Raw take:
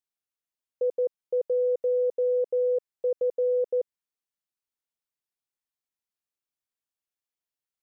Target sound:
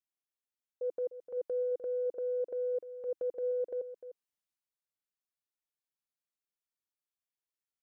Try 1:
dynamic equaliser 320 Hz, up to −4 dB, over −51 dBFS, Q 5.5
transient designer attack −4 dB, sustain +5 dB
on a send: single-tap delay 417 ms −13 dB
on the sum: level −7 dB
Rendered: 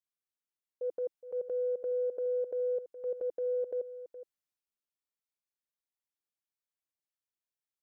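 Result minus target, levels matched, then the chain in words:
echo 116 ms late
dynamic equaliser 320 Hz, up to −4 dB, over −51 dBFS, Q 5.5
transient designer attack −4 dB, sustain +5 dB
on a send: single-tap delay 301 ms −13 dB
on the sum: level −7 dB

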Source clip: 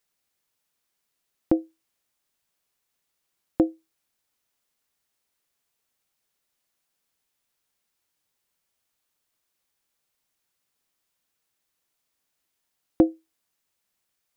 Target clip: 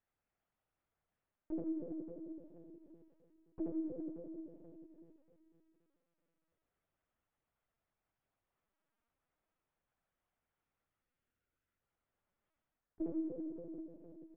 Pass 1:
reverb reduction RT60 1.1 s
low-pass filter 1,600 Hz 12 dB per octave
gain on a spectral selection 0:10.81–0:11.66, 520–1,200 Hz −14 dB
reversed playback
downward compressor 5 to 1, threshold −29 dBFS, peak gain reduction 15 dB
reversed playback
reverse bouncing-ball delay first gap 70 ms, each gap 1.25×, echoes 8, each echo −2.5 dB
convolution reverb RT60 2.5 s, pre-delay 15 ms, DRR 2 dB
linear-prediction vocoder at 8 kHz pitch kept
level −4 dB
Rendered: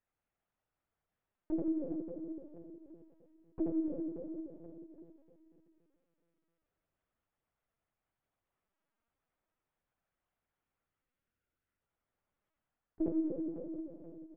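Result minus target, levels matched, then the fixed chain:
downward compressor: peak gain reduction −5.5 dB
reverb reduction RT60 1.1 s
low-pass filter 1,600 Hz 12 dB per octave
gain on a spectral selection 0:10.81–0:11.66, 520–1,200 Hz −14 dB
reversed playback
downward compressor 5 to 1, threshold −36 dBFS, peak gain reduction 20.5 dB
reversed playback
reverse bouncing-ball delay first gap 70 ms, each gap 1.25×, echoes 8, each echo −2.5 dB
convolution reverb RT60 2.5 s, pre-delay 15 ms, DRR 2 dB
linear-prediction vocoder at 8 kHz pitch kept
level −4 dB

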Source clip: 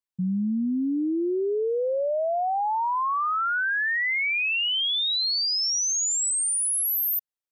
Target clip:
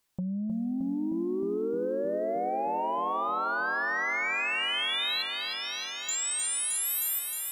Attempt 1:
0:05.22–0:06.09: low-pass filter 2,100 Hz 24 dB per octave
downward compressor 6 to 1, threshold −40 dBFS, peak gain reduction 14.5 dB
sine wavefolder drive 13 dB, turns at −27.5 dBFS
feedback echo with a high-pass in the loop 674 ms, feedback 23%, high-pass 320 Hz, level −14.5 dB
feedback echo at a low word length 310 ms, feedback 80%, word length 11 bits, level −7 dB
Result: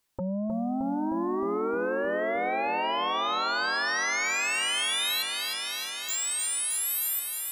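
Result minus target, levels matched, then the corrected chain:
downward compressor: peak gain reduction −8 dB
0:05.22–0:06.09: low-pass filter 2,100 Hz 24 dB per octave
downward compressor 6 to 1, threshold −49.5 dBFS, peak gain reduction 22.5 dB
sine wavefolder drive 13 dB, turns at −27.5 dBFS
feedback echo with a high-pass in the loop 674 ms, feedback 23%, high-pass 320 Hz, level −14.5 dB
feedback echo at a low word length 310 ms, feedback 80%, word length 11 bits, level −7 dB

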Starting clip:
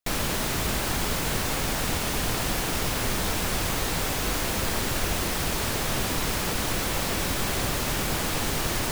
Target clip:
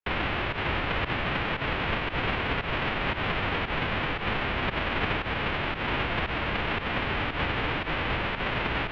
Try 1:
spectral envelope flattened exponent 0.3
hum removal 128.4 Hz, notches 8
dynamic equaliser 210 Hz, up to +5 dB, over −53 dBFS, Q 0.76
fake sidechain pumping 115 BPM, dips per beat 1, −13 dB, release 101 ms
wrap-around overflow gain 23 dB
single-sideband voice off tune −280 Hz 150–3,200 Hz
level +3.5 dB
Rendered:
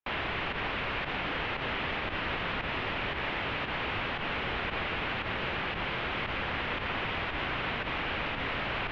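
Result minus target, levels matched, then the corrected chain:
wrap-around overflow: distortion +40 dB
spectral envelope flattened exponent 0.3
hum removal 128.4 Hz, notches 8
dynamic equaliser 210 Hz, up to +5 dB, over −53 dBFS, Q 0.76
fake sidechain pumping 115 BPM, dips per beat 1, −13 dB, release 101 ms
wrap-around overflow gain 11 dB
single-sideband voice off tune −280 Hz 150–3,200 Hz
level +3.5 dB

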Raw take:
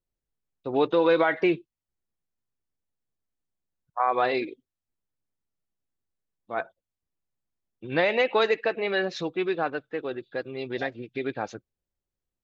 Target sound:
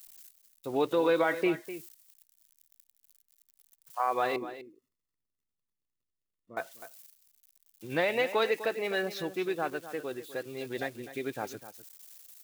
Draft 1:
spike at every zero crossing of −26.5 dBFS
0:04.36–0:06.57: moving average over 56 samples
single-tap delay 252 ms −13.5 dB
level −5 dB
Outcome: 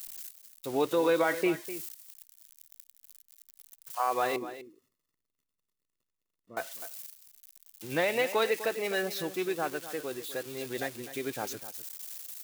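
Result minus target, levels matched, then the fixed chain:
spike at every zero crossing: distortion +9 dB
spike at every zero crossing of −36 dBFS
0:04.36–0:06.57: moving average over 56 samples
single-tap delay 252 ms −13.5 dB
level −5 dB

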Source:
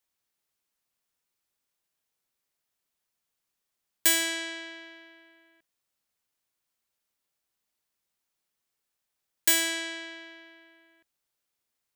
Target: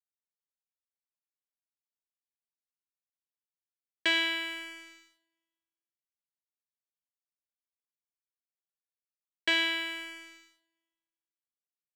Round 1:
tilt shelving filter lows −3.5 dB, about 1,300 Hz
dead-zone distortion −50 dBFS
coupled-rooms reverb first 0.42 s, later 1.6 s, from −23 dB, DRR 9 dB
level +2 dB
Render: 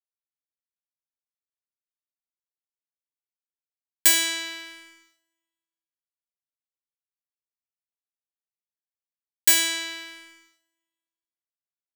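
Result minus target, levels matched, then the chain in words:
4,000 Hz band −4.5 dB
Chebyshev low-pass filter 3,100 Hz, order 3
tilt shelving filter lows −3.5 dB, about 1,300 Hz
dead-zone distortion −50 dBFS
coupled-rooms reverb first 0.42 s, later 1.6 s, from −23 dB, DRR 9 dB
level +2 dB

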